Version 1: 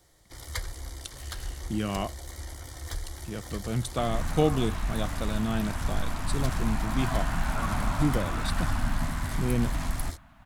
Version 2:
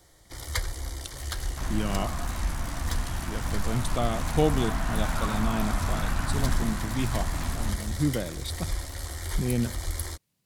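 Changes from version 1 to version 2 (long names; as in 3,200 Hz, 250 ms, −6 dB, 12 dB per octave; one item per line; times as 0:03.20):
first sound +4.5 dB
second sound: entry −2.40 s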